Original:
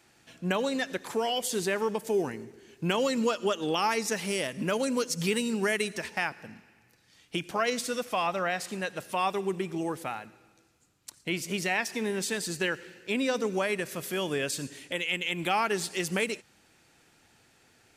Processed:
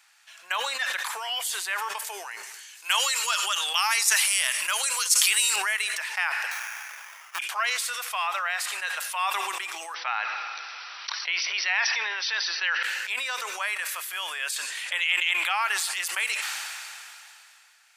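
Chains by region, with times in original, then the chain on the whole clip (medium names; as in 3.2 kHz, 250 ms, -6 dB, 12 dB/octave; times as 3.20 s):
2.43–5.56 s: low-pass 11 kHz + RIAA curve recording
6.51–7.39 s: low-pass 11 kHz + sample-rate reducer 4.1 kHz
9.94–12.83 s: brick-wall FIR band-pass 200–6000 Hz + level flattener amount 70%
14.56–15.61 s: treble shelf 9.6 kHz -9 dB + level flattener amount 50%
whole clip: high-pass 990 Hz 24 dB/octave; dynamic bell 5.8 kHz, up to -5 dB, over -50 dBFS, Q 1.4; decay stretcher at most 22 dB/s; trim +4 dB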